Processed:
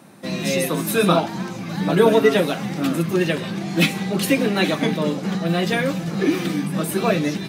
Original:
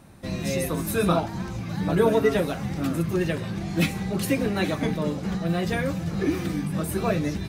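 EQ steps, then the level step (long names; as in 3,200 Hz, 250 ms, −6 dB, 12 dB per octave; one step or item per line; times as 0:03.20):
high-pass filter 160 Hz 24 dB per octave
dynamic equaliser 3,200 Hz, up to +5 dB, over −47 dBFS, Q 1.5
+5.5 dB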